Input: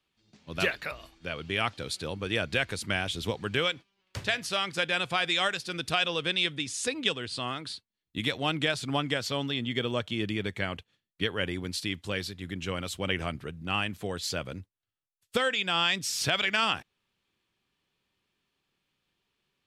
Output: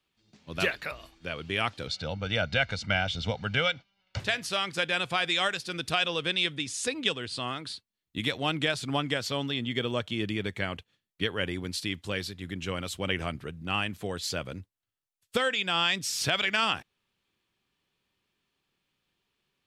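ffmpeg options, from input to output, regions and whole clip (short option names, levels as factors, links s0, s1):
-filter_complex "[0:a]asettb=1/sr,asplit=3[s0][s1][s2];[s0]atrim=end=1.874[s3];[s1]atrim=start=1.87:end=4.2,asetpts=PTS-STARTPTS,afade=t=in:d=0.004:c=qsin,afade=t=out:st=2.326:d=0.004:c=qsin,lowpass=f=5900:w=0.5412,lowpass=f=5900:w=1.3066,aecho=1:1:1.4:0.73,atrim=end_sample=102753[s4];[s2]atrim=start=4.196[s5];[s3][s4]acrossfade=d=0.004:c1=hsin:c2=qsin[s6];[s6][s5]acrossfade=d=0.004:c1=qsin:c2=hsin"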